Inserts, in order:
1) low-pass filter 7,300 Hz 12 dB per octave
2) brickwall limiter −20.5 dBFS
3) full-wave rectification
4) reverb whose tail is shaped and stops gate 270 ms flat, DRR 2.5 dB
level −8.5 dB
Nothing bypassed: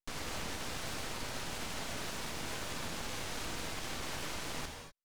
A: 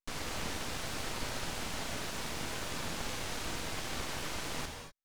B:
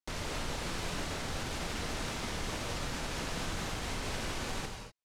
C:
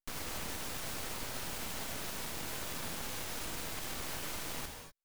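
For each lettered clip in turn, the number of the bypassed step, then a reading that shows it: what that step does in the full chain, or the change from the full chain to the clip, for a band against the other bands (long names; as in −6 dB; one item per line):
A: 2, average gain reduction 1.5 dB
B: 3, 125 Hz band +4.0 dB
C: 1, 8 kHz band +3.5 dB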